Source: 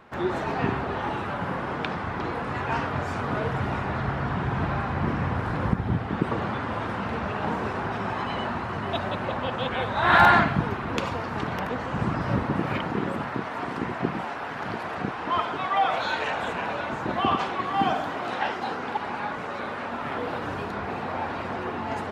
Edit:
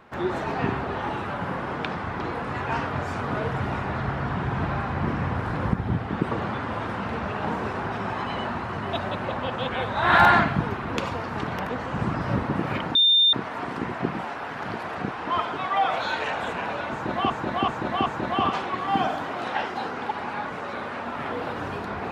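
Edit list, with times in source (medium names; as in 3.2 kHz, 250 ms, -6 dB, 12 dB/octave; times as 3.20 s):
12.95–13.33 s: bleep 3.61 kHz -14.5 dBFS
16.92–17.30 s: loop, 4 plays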